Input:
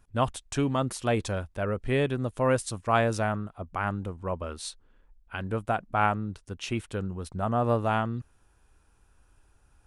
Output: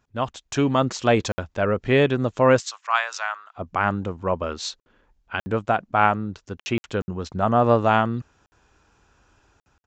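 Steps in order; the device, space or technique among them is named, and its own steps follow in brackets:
call with lost packets (high-pass filter 150 Hz 6 dB per octave; downsampling to 16,000 Hz; automatic gain control gain up to 9 dB; dropped packets of 60 ms)
0:02.60–0:03.56: high-pass filter 980 Hz 24 dB per octave

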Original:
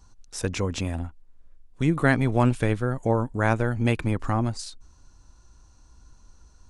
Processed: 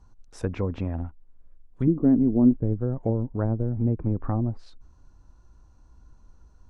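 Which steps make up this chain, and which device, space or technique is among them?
through cloth (high-shelf EQ 2,200 Hz −15 dB)
0:01.87–0:02.59: octave-band graphic EQ 125/250/4,000 Hz −9/+10/+5 dB
treble cut that deepens with the level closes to 370 Hz, closed at −19 dBFS

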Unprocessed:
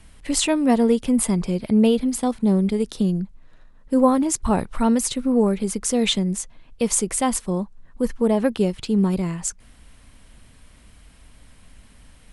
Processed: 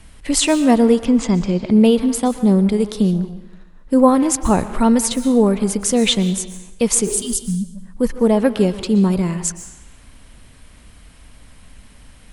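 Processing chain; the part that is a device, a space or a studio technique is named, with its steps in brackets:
0:01.05–0:01.71: Butterworth low-pass 7,100 Hz 48 dB per octave
0:07.10–0:07.67: healed spectral selection 240–2,800 Hz both
saturated reverb return (on a send at −10 dB: convolution reverb RT60 0.90 s, pre-delay 111 ms + soft clipping −21 dBFS, distortion −10 dB)
on the sum: level +4.5 dB

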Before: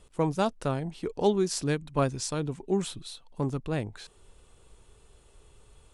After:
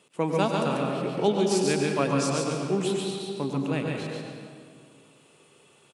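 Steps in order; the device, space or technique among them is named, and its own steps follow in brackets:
PA in a hall (high-pass filter 160 Hz 24 dB per octave; parametric band 2,600 Hz +7 dB 0.57 octaves; single-tap delay 142 ms −4 dB; convolution reverb RT60 2.2 s, pre-delay 91 ms, DRR 2 dB)

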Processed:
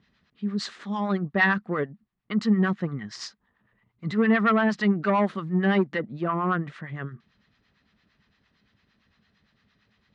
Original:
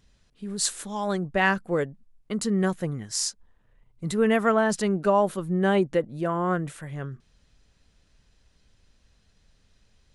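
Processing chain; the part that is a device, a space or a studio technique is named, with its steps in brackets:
guitar amplifier with harmonic tremolo (two-band tremolo in antiphase 8.8 Hz, depth 70%, crossover 760 Hz; soft clipping −19 dBFS, distortion −15 dB; loudspeaker in its box 110–4,400 Hz, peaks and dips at 210 Hz +7 dB, 530 Hz −5 dB, 1,200 Hz +6 dB, 1,900 Hz +7 dB)
0:05.06–0:06.05: high-shelf EQ 7,400 Hz +10 dB
level +3 dB

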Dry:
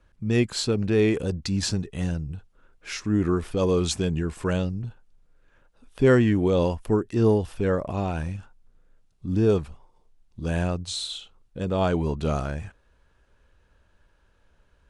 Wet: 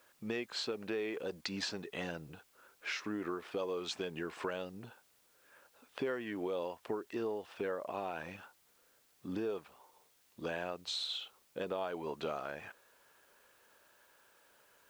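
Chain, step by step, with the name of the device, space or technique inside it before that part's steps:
baby monitor (band-pass filter 470–3,800 Hz; downward compressor 6 to 1, threshold −38 dBFS, peak gain reduction 19 dB; white noise bed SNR 29 dB)
level +2.5 dB

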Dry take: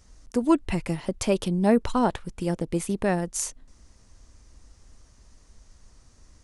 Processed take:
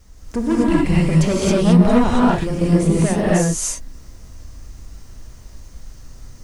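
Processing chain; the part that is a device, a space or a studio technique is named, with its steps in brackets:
compact cassette (soft clipping −21.5 dBFS, distortion −9 dB; low-pass filter 10,000 Hz; tape wow and flutter; white noise bed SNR 40 dB)
low-shelf EQ 350 Hz +5 dB
reverb whose tail is shaped and stops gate 300 ms rising, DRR −7 dB
level +3 dB

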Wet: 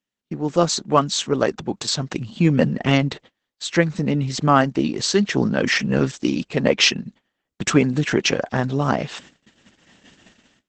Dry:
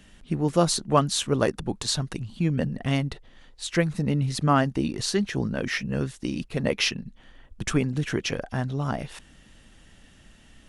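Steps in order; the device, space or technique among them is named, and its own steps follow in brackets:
video call (high-pass filter 170 Hz 12 dB per octave; automatic gain control gain up to 15 dB; noise gate −40 dBFS, range −30 dB; level −1 dB; Opus 12 kbit/s 48,000 Hz)

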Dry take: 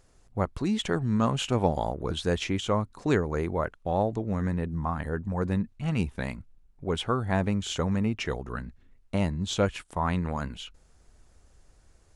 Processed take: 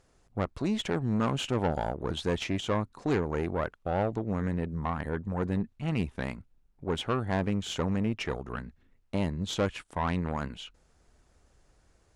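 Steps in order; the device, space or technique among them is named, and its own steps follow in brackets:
tube preamp driven hard (tube saturation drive 22 dB, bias 0.6; low-shelf EQ 93 Hz −6 dB; high-shelf EQ 6,300 Hz −6.5 dB)
level +2 dB

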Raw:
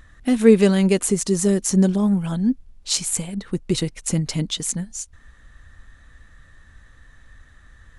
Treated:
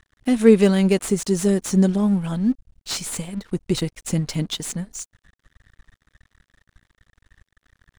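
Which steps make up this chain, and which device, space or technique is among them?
early transistor amplifier (dead-zone distortion −44 dBFS; slew-rate limiting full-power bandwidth 330 Hz)

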